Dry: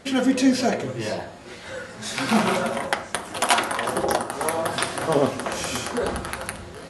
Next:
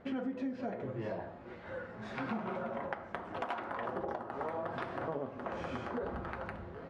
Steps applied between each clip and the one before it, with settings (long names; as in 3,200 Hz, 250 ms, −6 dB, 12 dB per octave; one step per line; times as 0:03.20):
low-pass filter 1,500 Hz 12 dB per octave
downward compressor 10 to 1, threshold −27 dBFS, peak gain reduction 14.5 dB
level −7 dB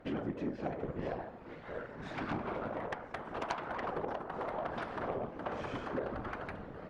random phases in short frames
harmonic generator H 4 −10 dB, 6 −13 dB, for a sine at −21 dBFS